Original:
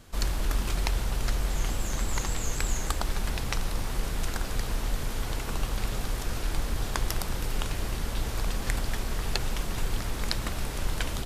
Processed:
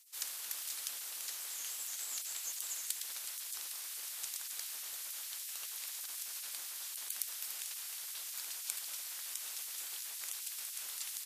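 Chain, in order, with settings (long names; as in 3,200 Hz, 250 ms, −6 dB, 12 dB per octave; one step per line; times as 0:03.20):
gate on every frequency bin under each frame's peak −25 dB weak
first difference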